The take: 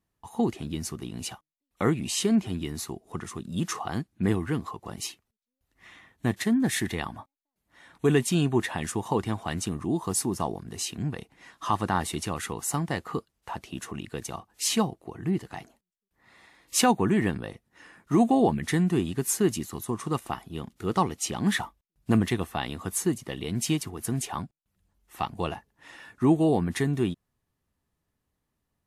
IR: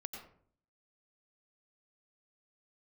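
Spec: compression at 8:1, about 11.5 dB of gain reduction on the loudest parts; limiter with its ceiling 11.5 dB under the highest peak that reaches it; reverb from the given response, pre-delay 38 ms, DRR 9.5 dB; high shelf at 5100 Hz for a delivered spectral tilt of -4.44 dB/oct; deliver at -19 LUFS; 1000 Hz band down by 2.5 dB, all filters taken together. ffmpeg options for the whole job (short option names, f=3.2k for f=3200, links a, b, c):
-filter_complex "[0:a]equalizer=f=1k:t=o:g=-3.5,highshelf=f=5.1k:g=4.5,acompressor=threshold=-29dB:ratio=8,alimiter=level_in=4.5dB:limit=-24dB:level=0:latency=1,volume=-4.5dB,asplit=2[a][b];[1:a]atrim=start_sample=2205,adelay=38[c];[b][c]afir=irnorm=-1:irlink=0,volume=-7dB[d];[a][d]amix=inputs=2:normalize=0,volume=20dB"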